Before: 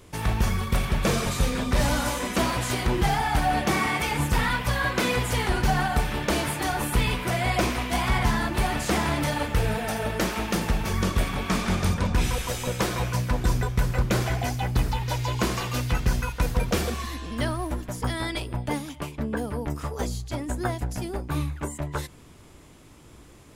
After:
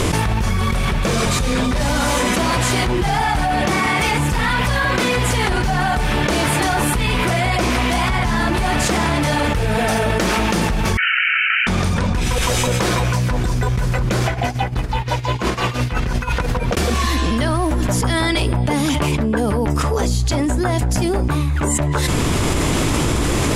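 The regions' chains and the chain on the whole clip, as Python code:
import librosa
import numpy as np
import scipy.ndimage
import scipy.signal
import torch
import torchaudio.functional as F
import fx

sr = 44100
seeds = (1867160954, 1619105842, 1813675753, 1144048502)

y = fx.chain(x, sr, fx.brickwall_bandpass(low_hz=1300.0, high_hz=3100.0),
    fx.tilt_eq(slope=2.5), at=(10.97, 11.67))
y = fx.chain(y, sr, fx.bass_treble(bass_db=-3, treble_db=-7),
    fx.tremolo_db(hz=5.8, depth_db=40), at=(14.27, 16.77))
y = scipy.signal.sosfilt(scipy.signal.butter(2, 11000.0, 'lowpass', fs=sr, output='sos'), y)
y = fx.env_flatten(y, sr, amount_pct=100)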